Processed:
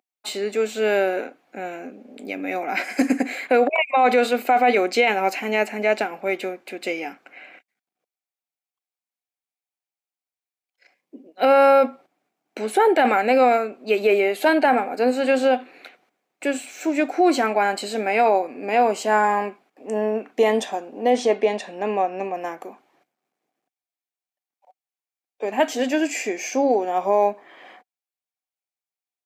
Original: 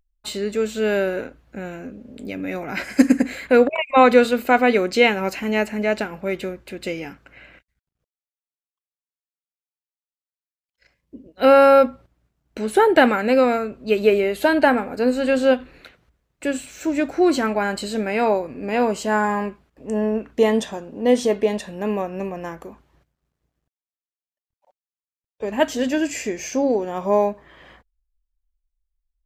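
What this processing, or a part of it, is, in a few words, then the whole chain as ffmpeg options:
laptop speaker: -filter_complex "[0:a]highpass=frequency=250:width=0.5412,highpass=frequency=250:width=1.3066,equalizer=frequency=750:width_type=o:width=0.23:gain=11.5,equalizer=frequency=2300:width_type=o:width=0.26:gain=6.5,alimiter=limit=-8.5dB:level=0:latency=1:release=12,asettb=1/sr,asplit=3[link_01][link_02][link_03];[link_01]atrim=end=21.104[link_04];[link_02]atrim=start=21.1:end=22.34,asetpts=PTS-STARTPTS,afade=type=in:duration=0.004:curve=qsin,afade=type=out:start_time=1.236:duration=0.004:curve=qsin,lowpass=7000[link_05];[link_03]atrim=start=22.336[link_06];[link_04][link_05]acrossfade=duration=0.004:curve1=hsin:curve2=qsin[link_07];[link_07][link_06]acrossfade=duration=0.004:curve1=qsin:curve2=hsin"

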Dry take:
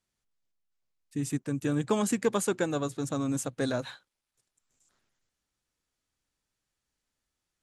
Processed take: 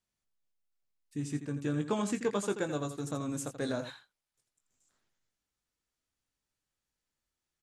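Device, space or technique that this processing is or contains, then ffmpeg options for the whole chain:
slapback doubling: -filter_complex "[0:a]asettb=1/sr,asplit=3[link_01][link_02][link_03];[link_01]atrim=end=1.224[link_04];[link_02]atrim=start=1.22:end=2.57,asetpts=PTS-STARTPTS,afade=type=in:duration=0.004:curve=qsin,afade=type=out:start_time=1.346:duration=0.004:curve=qsin,lowpass=7300[link_05];[link_03]atrim=start=2.566[link_06];[link_04][link_05]acrossfade=duration=0.004:curve1=hsin:curve2=qsin[link_07];[link_07][link_06]acrossfade=duration=0.004:curve1=qsin:curve2=hsin,asplit=3[link_08][link_09][link_10];[link_09]adelay=20,volume=-9dB[link_11];[link_10]adelay=84,volume=-10.5dB[link_12];[link_08][link_11][link_12]amix=inputs=3:normalize=0,volume=-5dB"

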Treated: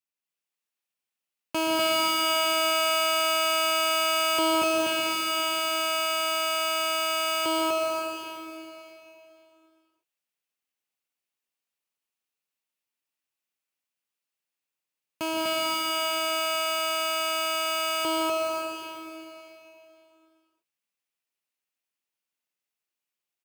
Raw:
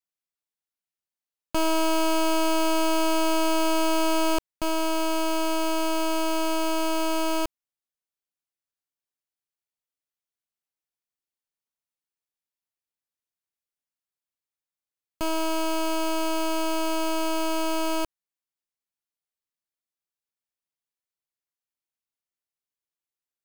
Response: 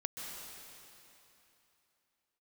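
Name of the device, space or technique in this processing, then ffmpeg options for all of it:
stadium PA: -filter_complex "[0:a]highpass=150,equalizer=frequency=2600:width_type=o:width=0.43:gain=6.5,aecho=1:1:160.3|247.8:0.316|0.891[link_01];[1:a]atrim=start_sample=2205[link_02];[link_01][link_02]afir=irnorm=-1:irlink=0"

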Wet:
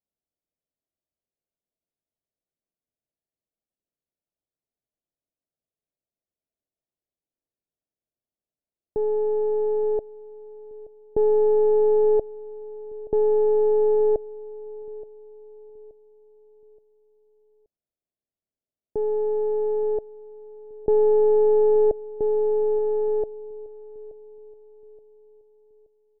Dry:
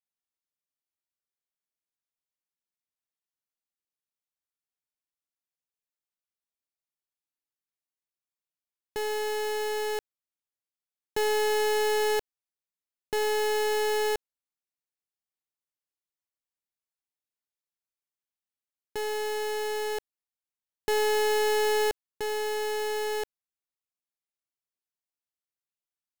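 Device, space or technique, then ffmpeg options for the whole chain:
under water: -filter_complex "[0:a]lowpass=frequency=620:width=0.5412,lowpass=frequency=620:width=1.3066,equalizer=frequency=650:width_type=o:width=0.22:gain=5.5,asplit=2[link_01][link_02];[link_02]adelay=875,lowpass=frequency=930:poles=1,volume=-18dB,asplit=2[link_03][link_04];[link_04]adelay=875,lowpass=frequency=930:poles=1,volume=0.45,asplit=2[link_05][link_06];[link_06]adelay=875,lowpass=frequency=930:poles=1,volume=0.45,asplit=2[link_07][link_08];[link_08]adelay=875,lowpass=frequency=930:poles=1,volume=0.45[link_09];[link_01][link_03][link_05][link_07][link_09]amix=inputs=5:normalize=0,volume=8.5dB"

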